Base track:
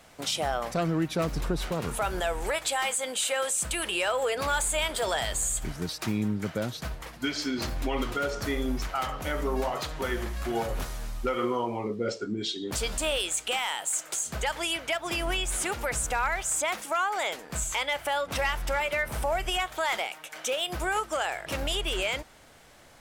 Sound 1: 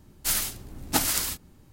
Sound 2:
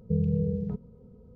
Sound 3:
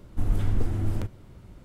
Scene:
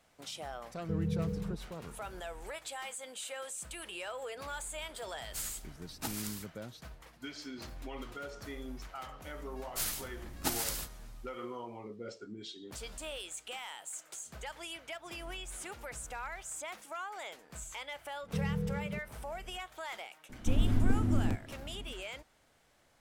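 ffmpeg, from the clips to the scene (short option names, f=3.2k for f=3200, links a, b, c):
-filter_complex "[2:a]asplit=2[a][b];[1:a]asplit=2[c][d];[0:a]volume=-14dB[e];[3:a]equalizer=f=250:t=o:w=0.4:g=12.5[f];[a]atrim=end=1.35,asetpts=PTS-STARTPTS,volume=-7dB,afade=t=in:d=0.004:c=hsin,afade=t=out:st=1.346:d=0.004:c=hsin,adelay=790[g];[c]atrim=end=1.72,asetpts=PTS-STARTPTS,volume=-15.5dB,afade=t=in:d=0.004:c=hsin,afade=t=out:st=1.716:d=0.004:c=hsin,adelay=224469S[h];[d]atrim=end=1.72,asetpts=PTS-STARTPTS,volume=-9.5dB,afade=t=in:d=0.004:c=hsin,afade=t=out:st=1.716:d=0.004:c=hsin,adelay=9510[i];[b]atrim=end=1.35,asetpts=PTS-STARTPTS,volume=-8dB,afade=t=in:d=0.004:c=hsin,afade=t=out:st=1.346:d=0.004:c=hsin,adelay=18230[j];[f]atrim=end=1.64,asetpts=PTS-STARTPTS,volume=-4dB,afade=t=in:d=0.004:c=hsin,afade=t=out:st=1.636:d=0.004:c=hsin,adelay=20290[k];[e][g][h][i][j][k]amix=inputs=6:normalize=0"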